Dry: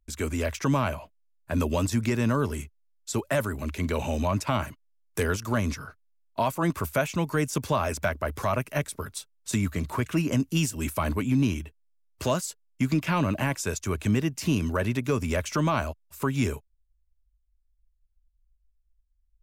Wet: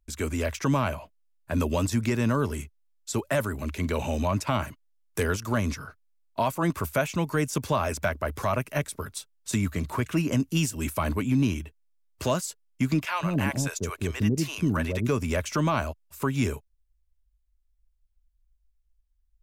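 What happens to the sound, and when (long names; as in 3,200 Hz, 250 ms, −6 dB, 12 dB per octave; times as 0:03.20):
0:13.05–0:15.09: multiband delay without the direct sound highs, lows 150 ms, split 590 Hz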